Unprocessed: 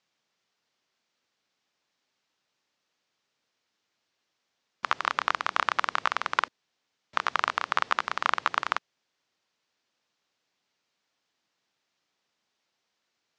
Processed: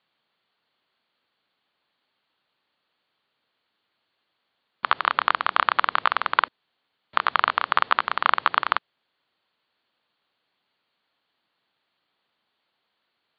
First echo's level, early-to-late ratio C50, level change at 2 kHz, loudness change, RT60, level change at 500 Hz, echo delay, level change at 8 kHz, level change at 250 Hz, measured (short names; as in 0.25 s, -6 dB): none, none, +4.5 dB, +5.5 dB, none, +4.0 dB, none, under -30 dB, +3.5 dB